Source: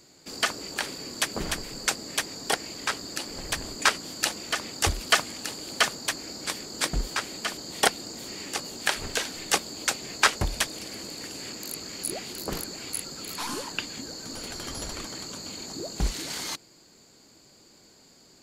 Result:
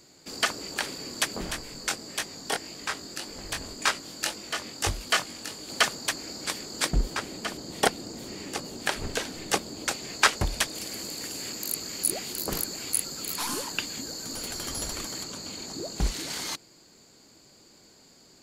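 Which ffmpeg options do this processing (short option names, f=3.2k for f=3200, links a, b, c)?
-filter_complex "[0:a]asplit=3[a][b][c];[a]afade=t=out:st=1.35:d=0.02[d];[b]flanger=delay=19.5:depth=3:speed=1.8,afade=t=in:st=1.35:d=0.02,afade=t=out:st=5.68:d=0.02[e];[c]afade=t=in:st=5.68:d=0.02[f];[d][e][f]amix=inputs=3:normalize=0,asettb=1/sr,asplit=3[g][h][i];[g]atrim=end=6.914[j];[h]atrim=start=6.91:end=9.91,asetpts=PTS-STARTPTS,afade=t=in:d=0.004:c=qsin,afade=t=out:st=2.996:d=0.004:c=qsin,tiltshelf=f=740:g=4[k];[i]atrim=start=9.906[l];[j][k]acrossfade=d=0.004:c1=hsin:c2=qsin[m];[m][l]acrossfade=d=0.004:c1=qsin:c2=hsin,asettb=1/sr,asplit=3[n][o][p];[n]atrim=end=10.754[q];[o]atrim=start=10.75:end=15.24,asetpts=PTS-STARTPTS,afade=t=in:d=0.004:c=qsin,afade=t=out:st=4.486:d=0.004:c=qsin,highshelf=f=9k:g=11[r];[p]atrim=start=15.236[s];[q][r]acrossfade=d=0.004:c1=hsin:c2=qsin[t];[t][s]acrossfade=d=0.004:c1=qsin:c2=hsin"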